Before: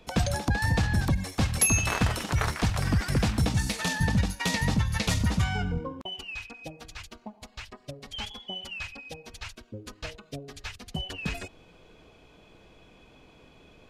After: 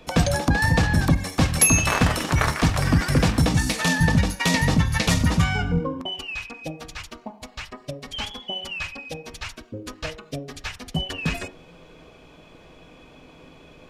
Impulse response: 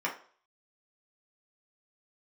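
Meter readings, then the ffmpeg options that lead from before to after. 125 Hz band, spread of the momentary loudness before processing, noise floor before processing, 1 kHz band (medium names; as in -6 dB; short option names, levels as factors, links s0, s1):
+5.5 dB, 18 LU, -57 dBFS, +7.0 dB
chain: -filter_complex "[0:a]asplit=2[s0][s1];[1:a]atrim=start_sample=2205,lowshelf=f=430:g=12[s2];[s1][s2]afir=irnorm=-1:irlink=0,volume=0.158[s3];[s0][s3]amix=inputs=2:normalize=0,volume=1.78"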